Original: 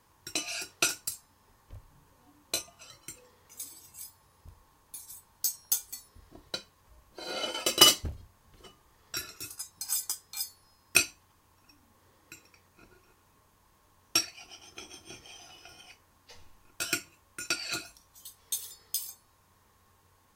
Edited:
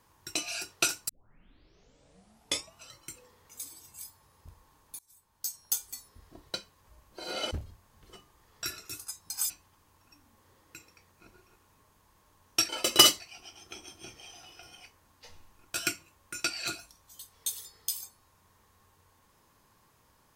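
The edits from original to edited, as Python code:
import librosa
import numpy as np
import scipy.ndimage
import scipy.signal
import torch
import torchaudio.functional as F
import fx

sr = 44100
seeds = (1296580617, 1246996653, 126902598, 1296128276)

y = fx.edit(x, sr, fx.tape_start(start_s=1.09, length_s=1.69),
    fx.fade_in_from(start_s=4.99, length_s=0.92, floor_db=-23.0),
    fx.move(start_s=7.51, length_s=0.51, to_s=14.26),
    fx.cut(start_s=10.01, length_s=1.06), tone=tone)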